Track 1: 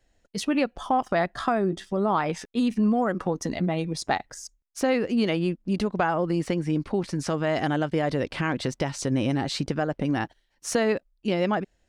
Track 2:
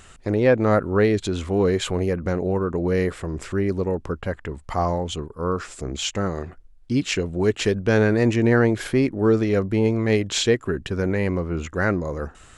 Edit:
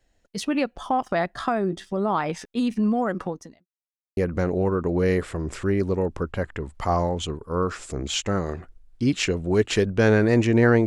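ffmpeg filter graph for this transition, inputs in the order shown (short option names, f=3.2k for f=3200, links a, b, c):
-filter_complex "[0:a]apad=whole_dur=10.86,atrim=end=10.86,asplit=2[a][b];[a]atrim=end=3.66,asetpts=PTS-STARTPTS,afade=t=out:st=3.22:d=0.44:c=qua[c];[b]atrim=start=3.66:end=4.17,asetpts=PTS-STARTPTS,volume=0[d];[1:a]atrim=start=2.06:end=8.75,asetpts=PTS-STARTPTS,afade=t=in:d=0.004:c=hsin[e];[c][d][e]concat=n=3:v=0:a=1"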